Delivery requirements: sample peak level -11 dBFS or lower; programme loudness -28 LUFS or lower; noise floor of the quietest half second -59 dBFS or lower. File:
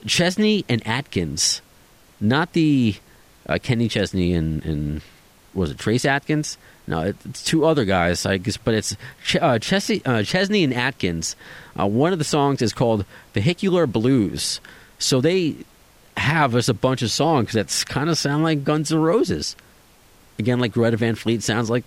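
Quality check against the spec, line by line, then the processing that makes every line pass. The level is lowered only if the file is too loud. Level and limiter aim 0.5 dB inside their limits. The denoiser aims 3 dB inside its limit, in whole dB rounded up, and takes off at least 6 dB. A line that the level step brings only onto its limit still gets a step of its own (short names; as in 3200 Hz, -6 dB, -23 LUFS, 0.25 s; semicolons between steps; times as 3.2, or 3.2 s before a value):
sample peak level -5.0 dBFS: fail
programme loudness -21.0 LUFS: fail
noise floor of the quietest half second -52 dBFS: fail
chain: gain -7.5 dB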